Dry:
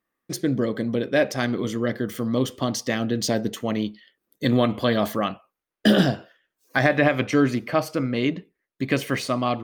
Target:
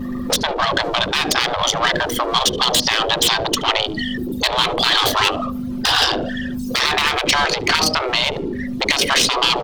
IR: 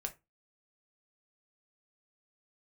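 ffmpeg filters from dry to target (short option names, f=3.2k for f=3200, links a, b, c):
-filter_complex "[0:a]aeval=exprs='val(0)+0.5*0.0282*sgn(val(0))':c=same,anlmdn=158,tiltshelf=f=820:g=5.5,aeval=exprs='val(0)+0.0282*(sin(2*PI*50*n/s)+sin(2*PI*2*50*n/s)/2+sin(2*PI*3*50*n/s)/3+sin(2*PI*4*50*n/s)/4+sin(2*PI*5*50*n/s)/5)':c=same,asoftclip=type=tanh:threshold=-7.5dB,asplit=2[a][b];[b]adelay=73,lowpass=f=1.2k:p=1,volume=-21dB,asplit=2[c][d];[d]adelay=73,lowpass=f=1.2k:p=1,volume=0.25[e];[a][c][e]amix=inputs=3:normalize=0,acompressor=threshold=-20dB:ratio=4,highshelf=f=2.7k:t=q:w=1.5:g=10,afftfilt=real='re*lt(hypot(re,im),0.0708)':imag='im*lt(hypot(re,im),0.0708)':win_size=1024:overlap=0.75,acrossover=split=130|350|860|5500[f][g][h][i][j];[f]acompressor=threshold=-59dB:ratio=4[k];[g]acompressor=threshold=-55dB:ratio=4[l];[h]acompressor=threshold=-55dB:ratio=4[m];[i]acompressor=threshold=-39dB:ratio=4[n];[j]acompressor=threshold=-55dB:ratio=4[o];[k][l][m][n][o]amix=inputs=5:normalize=0,alimiter=level_in=30dB:limit=-1dB:release=50:level=0:latency=1,volume=-2.5dB"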